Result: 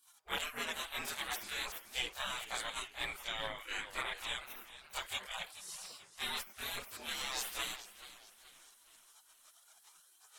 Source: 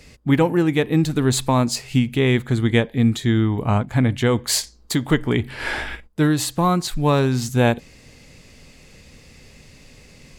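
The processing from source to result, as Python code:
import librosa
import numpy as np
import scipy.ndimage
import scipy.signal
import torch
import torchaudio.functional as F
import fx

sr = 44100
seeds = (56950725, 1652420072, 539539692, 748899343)

y = fx.spec_gate(x, sr, threshold_db=-30, keep='weak')
y = fx.chorus_voices(y, sr, voices=4, hz=0.35, base_ms=25, depth_ms=4.8, mix_pct=65)
y = fx.echo_warbled(y, sr, ms=431, feedback_pct=42, rate_hz=2.8, cents=167, wet_db=-14.5)
y = F.gain(torch.from_numpy(y), 3.5).numpy()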